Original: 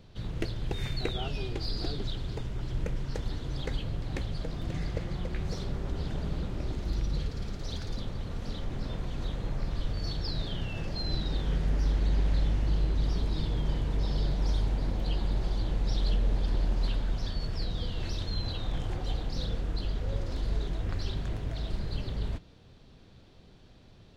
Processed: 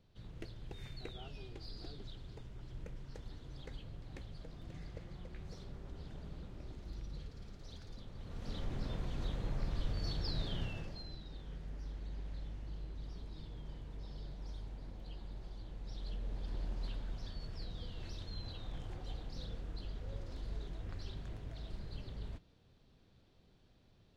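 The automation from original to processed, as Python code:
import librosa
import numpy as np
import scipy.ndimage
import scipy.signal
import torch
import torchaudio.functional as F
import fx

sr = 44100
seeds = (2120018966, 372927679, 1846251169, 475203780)

y = fx.gain(x, sr, db=fx.line((8.08, -15.0), (8.58, -5.0), (10.64, -5.0), (11.16, -18.0), (15.72, -18.0), (16.61, -12.0)))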